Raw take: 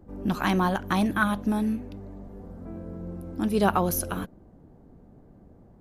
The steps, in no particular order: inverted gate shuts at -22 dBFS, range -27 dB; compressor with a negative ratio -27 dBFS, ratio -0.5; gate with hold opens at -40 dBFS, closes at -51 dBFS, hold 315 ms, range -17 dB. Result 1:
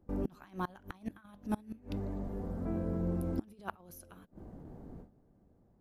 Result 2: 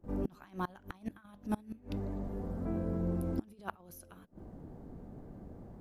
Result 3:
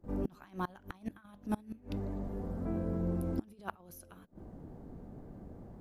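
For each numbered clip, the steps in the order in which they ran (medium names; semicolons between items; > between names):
gate with hold > compressor with a negative ratio > inverted gate; compressor with a negative ratio > gate with hold > inverted gate; compressor with a negative ratio > inverted gate > gate with hold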